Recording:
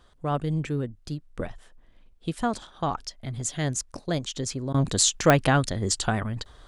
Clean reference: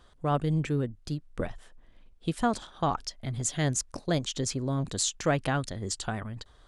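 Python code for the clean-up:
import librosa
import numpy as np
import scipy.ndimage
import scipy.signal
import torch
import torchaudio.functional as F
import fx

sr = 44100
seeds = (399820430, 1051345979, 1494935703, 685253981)

y = fx.fix_declick_ar(x, sr, threshold=10.0)
y = fx.fix_interpolate(y, sr, at_s=(4.73,), length_ms=11.0)
y = fx.gain(y, sr, db=fx.steps((0.0, 0.0), (4.73, -7.5)))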